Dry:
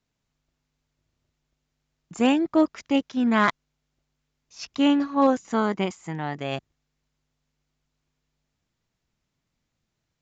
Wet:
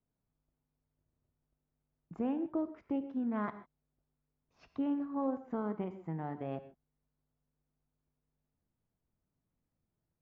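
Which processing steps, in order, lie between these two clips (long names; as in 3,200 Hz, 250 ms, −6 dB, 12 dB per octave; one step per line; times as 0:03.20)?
Bessel low-pass filter 820 Hz, order 2
downward compressor 2.5 to 1, threshold −31 dBFS, peak gain reduction 10.5 dB
reverb whose tail is shaped and stops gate 170 ms flat, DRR 10.5 dB
level −5 dB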